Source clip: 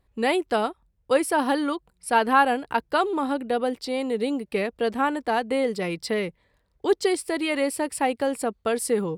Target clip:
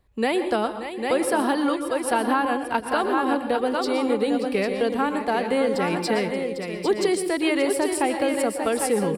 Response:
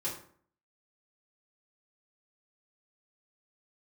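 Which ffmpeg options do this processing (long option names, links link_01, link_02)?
-filter_complex "[0:a]aecho=1:1:580|800:0.211|0.447,acrossover=split=270[link_01][link_02];[link_02]acompressor=threshold=-22dB:ratio=6[link_03];[link_01][link_03]amix=inputs=2:normalize=0,asplit=2[link_04][link_05];[1:a]atrim=start_sample=2205,afade=type=out:start_time=0.18:duration=0.01,atrim=end_sample=8379,adelay=115[link_06];[link_05][link_06]afir=irnorm=-1:irlink=0,volume=-12dB[link_07];[link_04][link_07]amix=inputs=2:normalize=0,volume=2.5dB"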